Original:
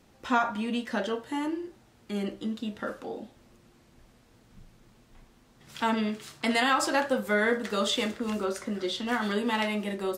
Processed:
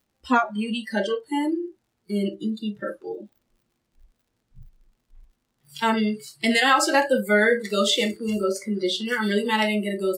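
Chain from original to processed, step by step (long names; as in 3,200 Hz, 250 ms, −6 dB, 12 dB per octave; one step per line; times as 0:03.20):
surface crackle 72 per second −41 dBFS
noise reduction from a noise print of the clip's start 23 dB
level +7 dB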